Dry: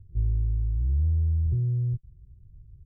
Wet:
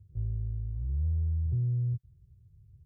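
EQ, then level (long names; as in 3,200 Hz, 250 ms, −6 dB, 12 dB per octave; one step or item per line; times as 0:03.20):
high-pass filter 94 Hz 12 dB per octave
parametric band 270 Hz −14.5 dB 0.78 octaves
0.0 dB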